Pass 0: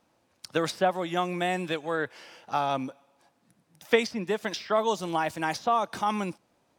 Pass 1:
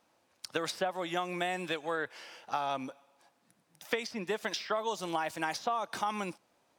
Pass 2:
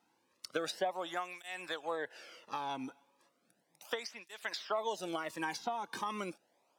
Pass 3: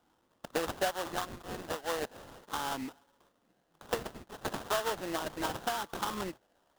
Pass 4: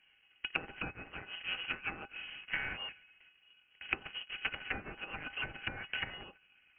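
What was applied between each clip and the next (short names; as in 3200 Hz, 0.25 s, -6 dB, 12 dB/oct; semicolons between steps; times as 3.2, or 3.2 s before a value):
low shelf 310 Hz -9.5 dB; compressor 12:1, threshold -28 dBFS, peak gain reduction 11.5 dB
tape flanging out of phase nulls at 0.35 Hz, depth 1.8 ms; gain -1 dB
sample-rate reducer 2300 Hz, jitter 20%; gain +3 dB
small resonant body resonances 200/540/1600/2300 Hz, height 13 dB, ringing for 95 ms; inverted band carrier 3100 Hz; treble ducked by the level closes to 690 Hz, closed at -28 dBFS; gain +1 dB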